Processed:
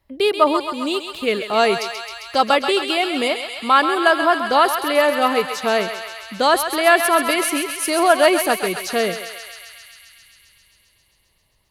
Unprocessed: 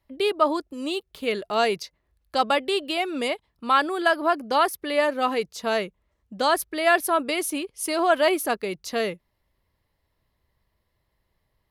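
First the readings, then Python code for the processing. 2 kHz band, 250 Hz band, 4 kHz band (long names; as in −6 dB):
+7.0 dB, +5.5 dB, +7.5 dB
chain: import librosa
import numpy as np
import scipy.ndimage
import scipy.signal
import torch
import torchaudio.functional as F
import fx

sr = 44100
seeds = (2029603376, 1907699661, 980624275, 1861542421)

y = fx.wow_flutter(x, sr, seeds[0], rate_hz=2.1, depth_cents=19.0)
y = fx.echo_thinned(y, sr, ms=133, feedback_pct=81, hz=760.0, wet_db=-7.0)
y = y * 10.0 ** (5.5 / 20.0)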